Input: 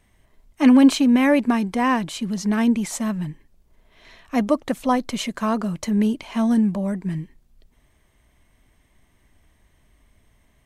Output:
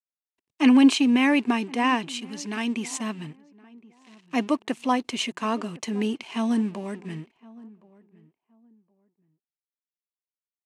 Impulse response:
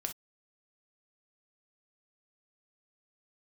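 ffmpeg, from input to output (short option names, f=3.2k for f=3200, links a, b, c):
-filter_complex "[0:a]asettb=1/sr,asplit=3[a][b][c];[a]atrim=end=2.194[d];[b]atrim=start=2.19:end=2.76,asetpts=PTS-STARTPTS,afade=t=in:d=0.004:c=qsin,afade=t=out:st=0.566:d=0.004:c=qsin,equalizer=f=380:t=o:w=2.7:g=-6[e];[c]atrim=start=2.756[f];[d][e]acrossfade=d=0.004:c1=hsin:c2=qsin[g];[g][f]acrossfade=d=0.004:c1=qsin:c2=hsin,aeval=exprs='sgn(val(0))*max(abs(val(0))-0.00501,0)':c=same,highpass=180,equalizer=f=190:t=q:w=4:g=-8,equalizer=f=390:t=q:w=4:g=3,equalizer=f=570:t=q:w=4:g=-9,equalizer=f=1.4k:t=q:w=4:g=-4,equalizer=f=2.7k:t=q:w=4:g=8,lowpass=f=9.8k:w=0.5412,lowpass=f=9.8k:w=1.3066,asplit=2[h][i];[i]adelay=1067,lowpass=f=1.1k:p=1,volume=-21.5dB,asplit=2[j][k];[k]adelay=1067,lowpass=f=1.1k:p=1,volume=0.23[l];[h][j][l]amix=inputs=3:normalize=0,volume=-1dB"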